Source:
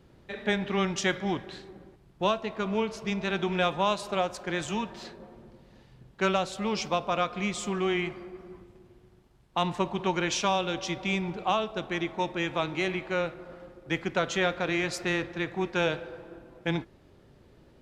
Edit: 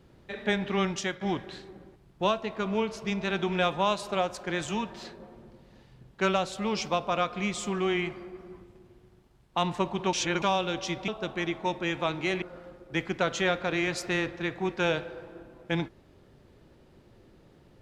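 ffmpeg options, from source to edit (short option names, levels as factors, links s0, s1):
-filter_complex "[0:a]asplit=6[s0][s1][s2][s3][s4][s5];[s0]atrim=end=1.21,asetpts=PTS-STARTPTS,afade=t=out:st=0.87:d=0.34:silence=0.298538[s6];[s1]atrim=start=1.21:end=10.132,asetpts=PTS-STARTPTS,afade=t=in:d=0.004:c=hsin:silence=0.298538[s7];[s2]atrim=start=10.128:end=10.422,asetpts=PTS-STARTPTS,areverse[s8];[s3]atrim=start=10.418:end=11.082[s9];[s4]atrim=start=11.618:end=12.962[s10];[s5]atrim=start=13.378[s11];[s6][s7]concat=n=2:v=0:a=1[s12];[s12][s8]acrossfade=d=0.004:c1=hsin:c2=hsin[s13];[s13][s9]acrossfade=d=0.004:c1=hsin:c2=hsin[s14];[s14][s10]acrossfade=d=0.004:c1=hsin:c2=hsin[s15];[s15][s11]acrossfade=d=0.004:c1=hsin:c2=hsin"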